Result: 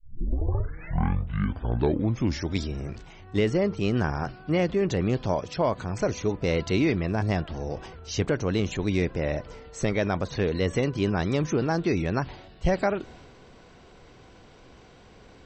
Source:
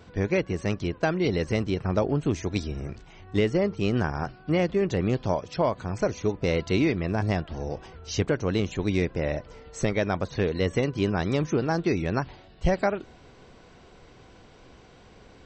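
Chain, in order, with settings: tape start-up on the opening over 2.71 s; transient shaper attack -1 dB, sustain +4 dB

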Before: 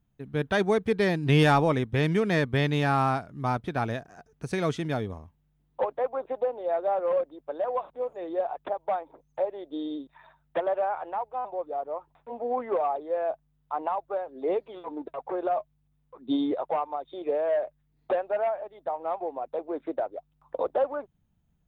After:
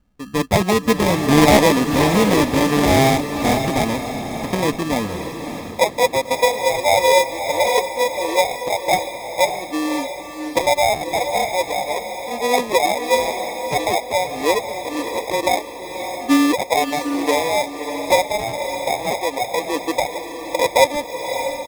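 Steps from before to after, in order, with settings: comb 3.8 ms, depth 72%; sample-and-hold 30×; echo that smears into a reverb 597 ms, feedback 40%, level -7.5 dB; loudspeaker Doppler distortion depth 0.19 ms; trim +7.5 dB

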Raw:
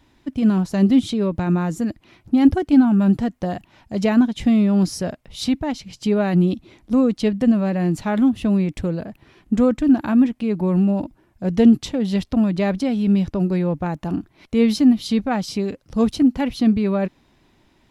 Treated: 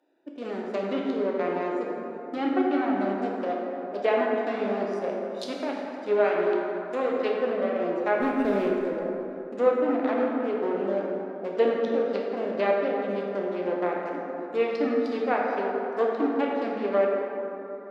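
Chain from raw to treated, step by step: local Wiener filter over 41 samples; high-pass 420 Hz 24 dB/octave; low-pass that closes with the level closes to 2.7 kHz, closed at -26.5 dBFS; 6.24–7.40 s: tilt EQ +2 dB/octave; 8.20–8.73 s: waveshaping leveller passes 2; plate-style reverb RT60 3.3 s, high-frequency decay 0.4×, DRR -2.5 dB

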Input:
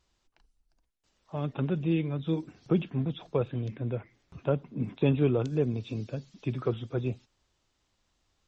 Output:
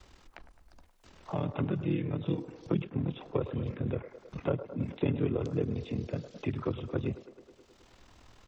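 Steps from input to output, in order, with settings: ring modulator 20 Hz; harmony voices -4 st -6 dB; feedback echo behind a band-pass 106 ms, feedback 54%, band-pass 810 Hz, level -11 dB; three bands compressed up and down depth 70%; trim -1 dB

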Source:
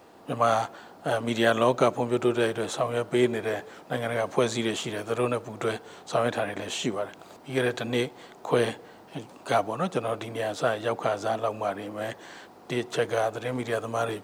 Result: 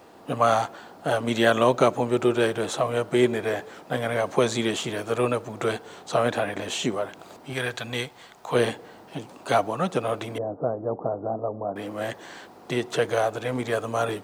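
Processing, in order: 7.53–8.55 s: peaking EQ 330 Hz -10.5 dB 2.1 oct; 10.38–11.76 s: Bessel low-pass 620 Hz, order 8; trim +2.5 dB

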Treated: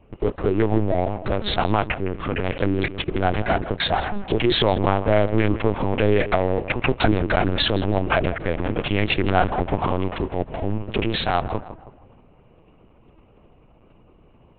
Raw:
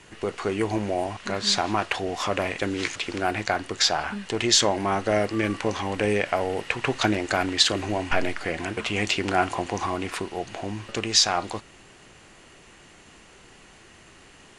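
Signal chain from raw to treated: local Wiener filter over 25 samples; high-pass 49 Hz 12 dB/octave; bass shelf 120 Hz +7 dB; waveshaping leveller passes 2; in parallel at +2.5 dB: compression 6:1, threshold -32 dBFS, peak gain reduction 20 dB; 1.87–2.45 s: on the sum: static phaser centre 1.9 kHz, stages 4; on a send: tape echo 161 ms, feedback 48%, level -11 dB, low-pass 1.8 kHz; on the sum: LPC vocoder at 8 kHz pitch kept; trim -3 dB

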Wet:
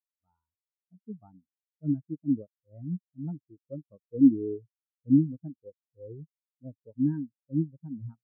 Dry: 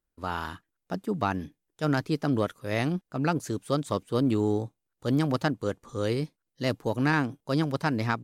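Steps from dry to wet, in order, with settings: distance through air 490 m; spectral contrast expander 4:1; trim +5.5 dB

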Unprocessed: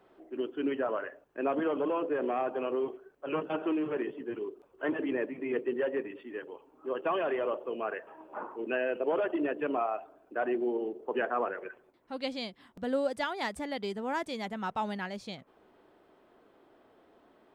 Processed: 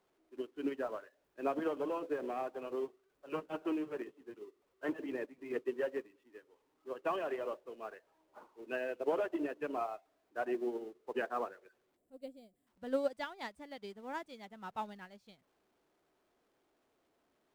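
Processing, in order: jump at every zero crossing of -45 dBFS; time-frequency box 11.96–12.67 s, 760–7100 Hz -14 dB; upward expansion 2.5:1, over -43 dBFS; trim -2 dB

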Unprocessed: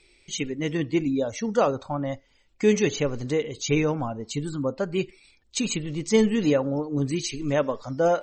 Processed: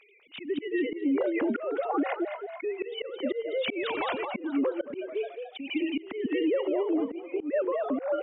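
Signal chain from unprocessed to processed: formants replaced by sine waves; compression 5:1, threshold -27 dBFS, peak gain reduction 12.5 dB; 7.00–7.59 s: gate -30 dBFS, range -11 dB; frequency-shifting echo 217 ms, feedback 41%, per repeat +60 Hz, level -9 dB; slow attack 233 ms; 1.89–2.65 s: comb 2.8 ms, depth 66%; peak limiter -27.5 dBFS, peak gain reduction 7.5 dB; 3.83–4.25 s: spectrum-flattening compressor 2:1; trim +7.5 dB

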